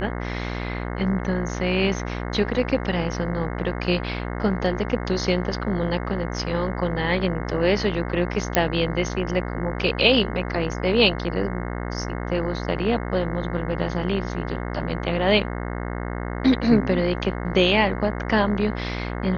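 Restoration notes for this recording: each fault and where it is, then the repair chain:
mains buzz 60 Hz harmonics 36 −29 dBFS
0:08.55: click −2 dBFS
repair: click removal
hum removal 60 Hz, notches 36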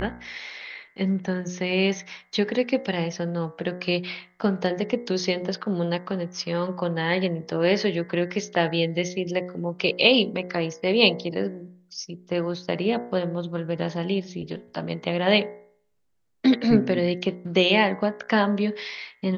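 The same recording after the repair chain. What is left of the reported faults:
none of them is left

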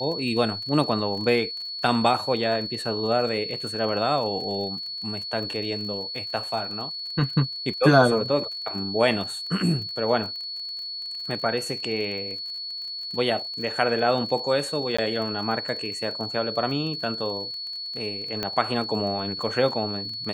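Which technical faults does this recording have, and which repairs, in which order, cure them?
surface crackle 29 per second −34 dBFS
whistle 4,400 Hz −31 dBFS
0:14.97–0:14.98: drop-out 15 ms
0:18.43: click −13 dBFS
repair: click removal
notch filter 4,400 Hz, Q 30
repair the gap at 0:14.97, 15 ms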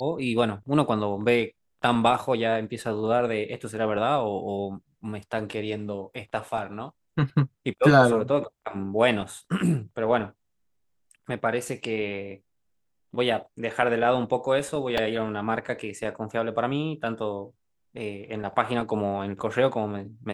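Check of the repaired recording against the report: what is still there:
none of them is left

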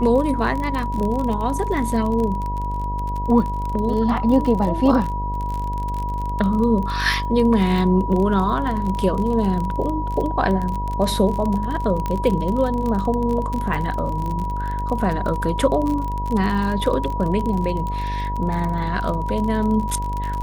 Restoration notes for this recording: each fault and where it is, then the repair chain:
mains buzz 50 Hz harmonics 20 −26 dBFS
surface crackle 33 per second −24 dBFS
whistle 970 Hz −26 dBFS
0:12.06: click −12 dBFS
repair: click removal
hum removal 50 Hz, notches 20
notch filter 970 Hz, Q 30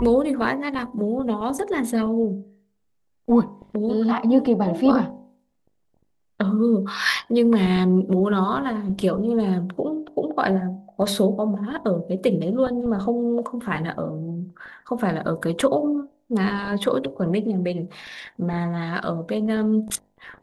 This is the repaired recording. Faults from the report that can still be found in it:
none of them is left

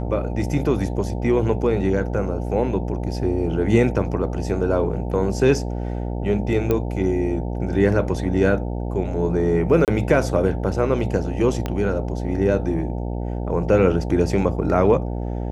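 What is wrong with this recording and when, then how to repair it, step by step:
mains buzz 60 Hz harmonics 15 −26 dBFS
0:06.71: click −9 dBFS
0:09.85–0:09.88: drop-out 28 ms
0:11.66: click −11 dBFS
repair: click removal
hum removal 60 Hz, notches 15
repair the gap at 0:09.85, 28 ms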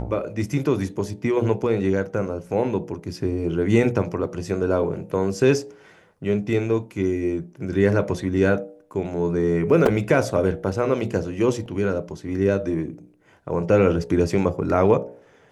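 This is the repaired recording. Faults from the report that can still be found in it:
0:11.66: click

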